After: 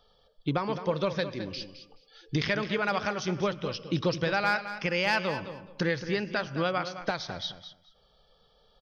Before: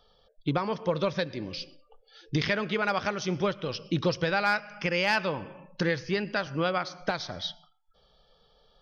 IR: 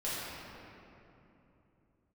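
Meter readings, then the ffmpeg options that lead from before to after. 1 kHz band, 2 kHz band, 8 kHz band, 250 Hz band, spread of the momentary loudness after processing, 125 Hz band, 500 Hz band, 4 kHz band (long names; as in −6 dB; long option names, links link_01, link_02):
−0.5 dB, −0.5 dB, can't be measured, −0.5 dB, 10 LU, −0.5 dB, −0.5 dB, −0.5 dB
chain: -af "aecho=1:1:213|426:0.266|0.0479,volume=-1dB"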